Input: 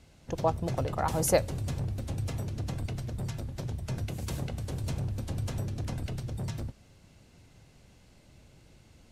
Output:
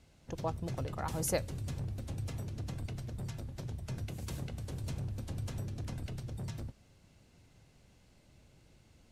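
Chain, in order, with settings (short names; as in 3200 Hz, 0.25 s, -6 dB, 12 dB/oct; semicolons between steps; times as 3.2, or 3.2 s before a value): dynamic EQ 700 Hz, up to -5 dB, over -44 dBFS, Q 1.1; gain -5.5 dB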